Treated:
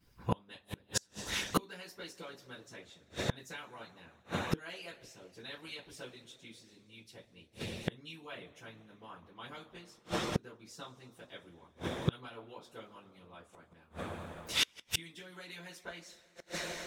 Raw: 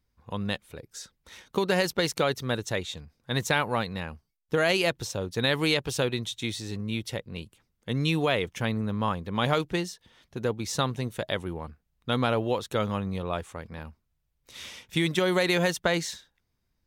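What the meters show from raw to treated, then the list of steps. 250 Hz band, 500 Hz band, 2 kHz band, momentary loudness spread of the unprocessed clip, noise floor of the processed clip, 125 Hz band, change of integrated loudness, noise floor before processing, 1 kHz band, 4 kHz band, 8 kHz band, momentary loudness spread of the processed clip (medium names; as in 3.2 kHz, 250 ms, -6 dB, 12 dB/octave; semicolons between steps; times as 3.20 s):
-13.0 dB, -16.0 dB, -12.5 dB, 17 LU, -66 dBFS, -12.0 dB, -11.5 dB, -76 dBFS, -12.5 dB, -8.5 dB, -6.0 dB, 19 LU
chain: two-slope reverb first 0.24 s, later 3 s, from -22 dB, DRR -9 dB; inverted gate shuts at -23 dBFS, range -33 dB; harmonic-percussive split harmonic -13 dB; trim +7 dB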